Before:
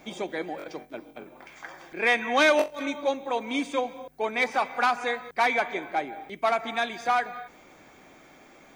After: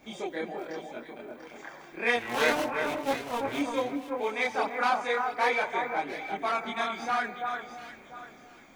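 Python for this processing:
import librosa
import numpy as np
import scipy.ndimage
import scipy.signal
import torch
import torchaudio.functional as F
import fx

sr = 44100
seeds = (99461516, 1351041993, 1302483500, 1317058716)

p1 = fx.cycle_switch(x, sr, every=2, mode='muted', at=(2.16, 3.59))
p2 = fx.chorus_voices(p1, sr, voices=2, hz=0.32, base_ms=27, depth_ms=2.6, mix_pct=55)
y = p2 + fx.echo_alternate(p2, sr, ms=345, hz=1800.0, feedback_pct=51, wet_db=-4.0, dry=0)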